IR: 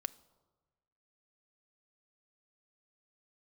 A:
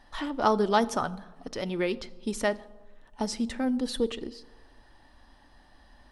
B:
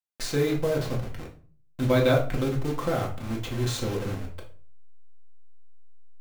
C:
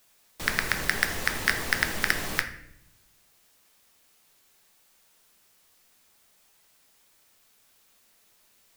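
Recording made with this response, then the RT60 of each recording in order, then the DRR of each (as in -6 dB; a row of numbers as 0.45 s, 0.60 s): A; 1.3 s, 0.40 s, 0.75 s; 12.0 dB, -2.0 dB, 5.5 dB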